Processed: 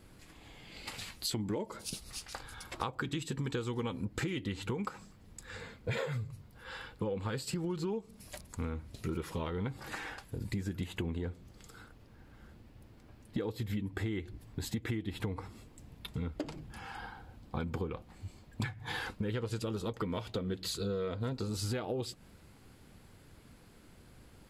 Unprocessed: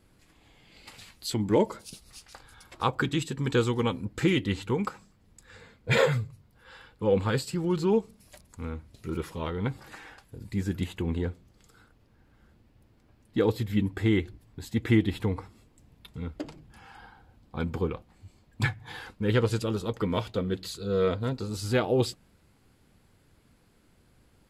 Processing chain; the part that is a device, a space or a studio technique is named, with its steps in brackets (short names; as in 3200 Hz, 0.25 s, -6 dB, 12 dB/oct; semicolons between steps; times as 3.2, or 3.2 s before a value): serial compression, leveller first (compressor 2.5:1, threshold -29 dBFS, peak gain reduction 8.5 dB; compressor, threshold -38 dBFS, peak gain reduction 13 dB); gain +5 dB